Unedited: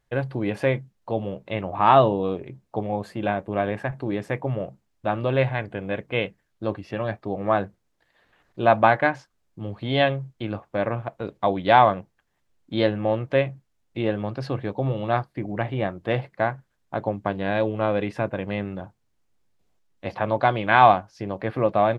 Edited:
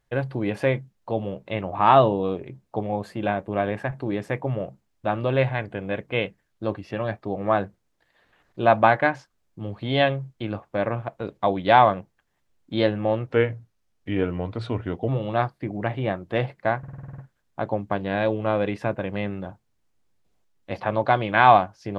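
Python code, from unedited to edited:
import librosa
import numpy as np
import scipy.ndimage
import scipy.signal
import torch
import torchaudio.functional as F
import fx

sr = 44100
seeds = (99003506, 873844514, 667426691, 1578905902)

y = fx.edit(x, sr, fx.speed_span(start_s=13.27, length_s=1.56, speed=0.86),
    fx.stutter(start_s=16.53, slice_s=0.05, count=9), tone=tone)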